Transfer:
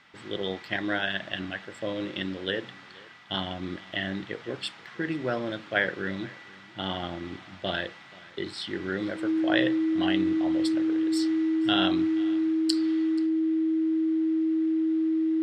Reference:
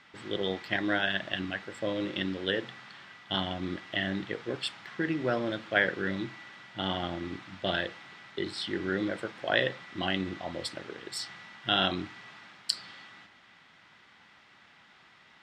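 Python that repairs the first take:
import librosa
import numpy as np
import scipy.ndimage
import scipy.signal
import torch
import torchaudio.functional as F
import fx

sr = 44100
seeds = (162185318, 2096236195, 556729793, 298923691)

y = fx.notch(x, sr, hz=320.0, q=30.0)
y = fx.fix_echo_inverse(y, sr, delay_ms=482, level_db=-22.5)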